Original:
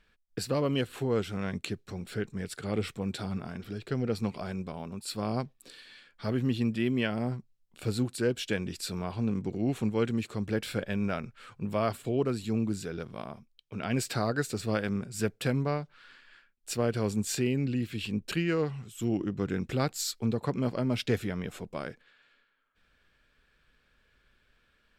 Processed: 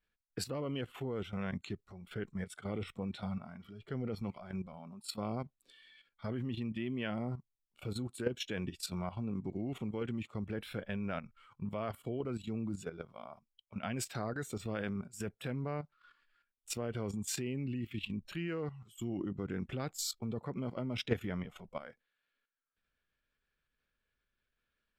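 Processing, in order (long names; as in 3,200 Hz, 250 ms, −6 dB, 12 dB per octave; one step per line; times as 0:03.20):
noise reduction from a noise print of the clip's start 12 dB
output level in coarse steps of 12 dB
level −1 dB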